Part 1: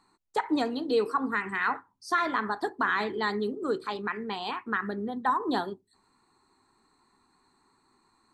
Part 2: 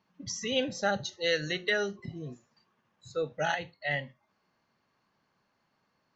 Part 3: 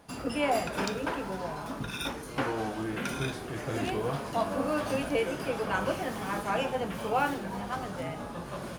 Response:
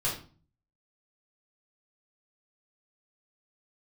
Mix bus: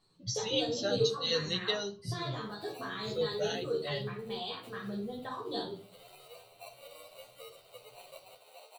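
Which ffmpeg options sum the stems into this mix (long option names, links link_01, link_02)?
-filter_complex "[0:a]volume=-1.5dB,asplit=2[link_01][link_02];[link_02]volume=-10dB[link_03];[1:a]volume=-1.5dB,asplit=2[link_04][link_05];[link_05]volume=-20dB[link_06];[2:a]acrusher=samples=26:mix=1:aa=0.000001,highpass=frequency=580:width=0.5412,highpass=frequency=580:width=1.3066,adelay=2250,volume=-13.5dB,asplit=2[link_07][link_08];[link_08]volume=-18dB[link_09];[link_01][link_07]amix=inputs=2:normalize=0,asuperstop=centerf=5400:order=4:qfactor=1.2,acompressor=threshold=-36dB:ratio=6,volume=0dB[link_10];[3:a]atrim=start_sample=2205[link_11];[link_03][link_06][link_09]amix=inputs=3:normalize=0[link_12];[link_12][link_11]afir=irnorm=-1:irlink=0[link_13];[link_04][link_10][link_13]amix=inputs=3:normalize=0,equalizer=frequency=125:width_type=o:width=1:gain=12,equalizer=frequency=250:width_type=o:width=1:gain=-9,equalizer=frequency=500:width_type=o:width=1:gain=5,equalizer=frequency=1000:width_type=o:width=1:gain=-10,equalizer=frequency=2000:width_type=o:width=1:gain=-9,equalizer=frequency=4000:width_type=o:width=1:gain=11,asplit=2[link_14][link_15];[link_15]adelay=10.6,afreqshift=1.6[link_16];[link_14][link_16]amix=inputs=2:normalize=1"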